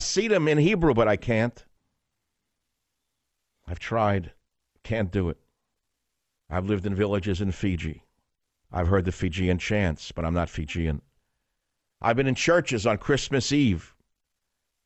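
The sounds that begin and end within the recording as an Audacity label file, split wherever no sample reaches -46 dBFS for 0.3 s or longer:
3.670000	4.310000	sound
4.840000	5.330000	sound
6.500000	7.990000	sound
8.710000	10.990000	sound
12.010000	13.890000	sound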